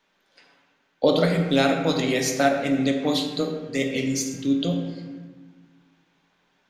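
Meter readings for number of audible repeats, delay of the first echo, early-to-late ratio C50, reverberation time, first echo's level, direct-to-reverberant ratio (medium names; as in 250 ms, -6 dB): no echo, no echo, 4.5 dB, 1.3 s, no echo, 2.0 dB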